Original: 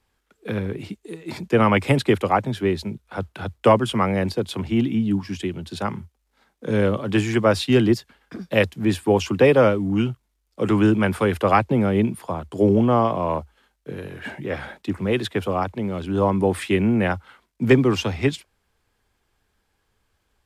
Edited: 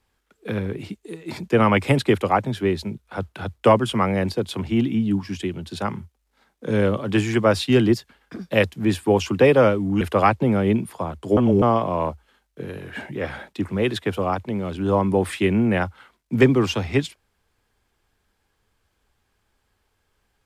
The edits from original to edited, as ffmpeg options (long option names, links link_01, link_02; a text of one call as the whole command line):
ffmpeg -i in.wav -filter_complex "[0:a]asplit=4[link_01][link_02][link_03][link_04];[link_01]atrim=end=10.012[link_05];[link_02]atrim=start=11.298:end=12.662[link_06];[link_03]atrim=start=12.658:end=12.912,asetpts=PTS-STARTPTS,areverse[link_07];[link_04]atrim=start=12.908[link_08];[link_05][link_06]acrossfade=duration=0.004:curve1=hsin:curve2=hsin[link_09];[link_09][link_07]acrossfade=duration=0.004:curve1=hsin:curve2=hsin[link_10];[link_10][link_08]acrossfade=duration=0.004:curve1=hsin:curve2=hsin" out.wav